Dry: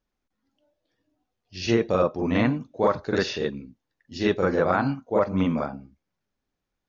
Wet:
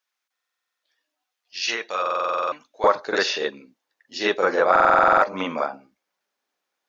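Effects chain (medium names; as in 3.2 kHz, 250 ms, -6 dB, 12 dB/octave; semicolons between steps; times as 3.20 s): high-pass 1.3 kHz 12 dB/octave, from 2.84 s 570 Hz; buffer glitch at 0.32/2.01/4.71 s, samples 2048, times 10; trim +7 dB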